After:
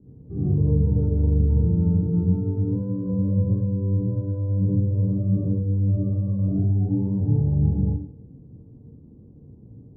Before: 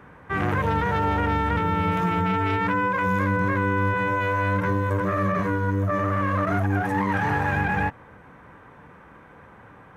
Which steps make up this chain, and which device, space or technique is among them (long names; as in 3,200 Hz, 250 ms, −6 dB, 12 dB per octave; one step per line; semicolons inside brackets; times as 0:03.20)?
next room (low-pass filter 310 Hz 24 dB per octave; convolution reverb RT60 0.50 s, pre-delay 44 ms, DRR −6 dB)
0:03.09–0:03.55: parametric band 630 Hz +5.5 dB 0.77 octaves